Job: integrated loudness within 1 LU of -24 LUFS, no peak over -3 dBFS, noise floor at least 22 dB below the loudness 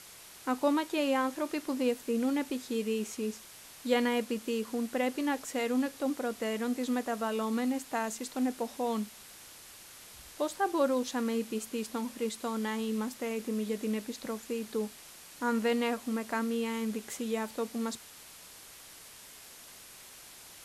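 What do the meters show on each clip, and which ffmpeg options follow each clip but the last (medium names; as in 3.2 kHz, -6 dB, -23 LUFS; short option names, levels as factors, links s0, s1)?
noise floor -51 dBFS; noise floor target -55 dBFS; loudness -33.0 LUFS; peak level -14.5 dBFS; loudness target -24.0 LUFS
-> -af "afftdn=nr=6:nf=-51"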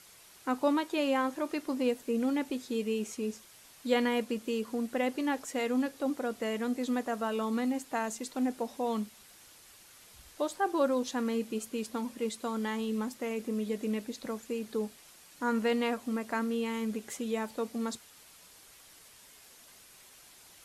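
noise floor -56 dBFS; loudness -33.0 LUFS; peak level -14.5 dBFS; loudness target -24.0 LUFS
-> -af "volume=2.82"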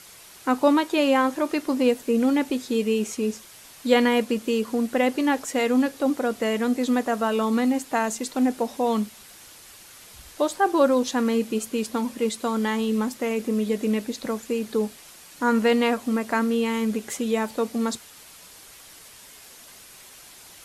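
loudness -24.0 LUFS; peak level -5.5 dBFS; noise floor -47 dBFS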